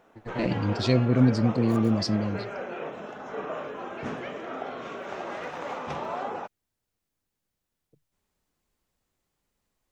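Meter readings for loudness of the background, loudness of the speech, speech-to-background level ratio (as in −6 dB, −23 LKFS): −35.5 LKFS, −25.0 LKFS, 10.5 dB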